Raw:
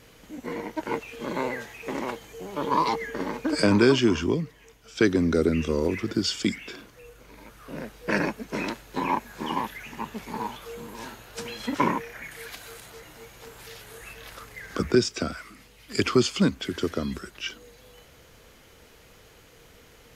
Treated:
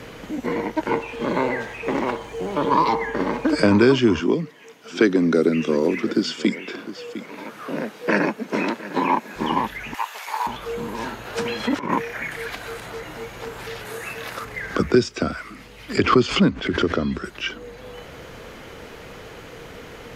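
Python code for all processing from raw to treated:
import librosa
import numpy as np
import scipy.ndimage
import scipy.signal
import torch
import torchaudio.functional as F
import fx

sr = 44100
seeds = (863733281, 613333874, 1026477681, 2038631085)

y = fx.chain(x, sr, fx.echo_banded(ms=61, feedback_pct=59, hz=750.0, wet_db=-11),
    fx.resample_linear(factor=2), at=(0.9, 3.46))
y = fx.chain(y, sr, fx.highpass(hz=180.0, slope=24),
    fx.echo_single(ms=705, db=-19.0), at=(4.19, 9.36))
y = fx.chain(y, sr, fx.highpass(hz=700.0, slope=24),
    fx.high_shelf(hz=4400.0, db=11.0), at=(9.94, 10.47))
y = fx.chain(y, sr, fx.highpass(hz=110.0, slope=6),
    fx.over_compress(threshold_db=-28.0, ratio=-0.5), at=(11.25, 12.36))
y = fx.chain(y, sr, fx.highpass(hz=110.0, slope=12),
    fx.high_shelf(hz=4500.0, db=8.0),
    fx.notch(hz=3200.0, q=19.0), at=(13.85, 14.45))
y = fx.chain(y, sr, fx.air_absorb(metres=79.0),
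    fx.pre_swell(db_per_s=90.0), at=(15.97, 17.24))
y = fx.high_shelf(y, sr, hz=5200.0, db=-11.0)
y = fx.band_squash(y, sr, depth_pct=40)
y = F.gain(torch.from_numpy(y), 6.5).numpy()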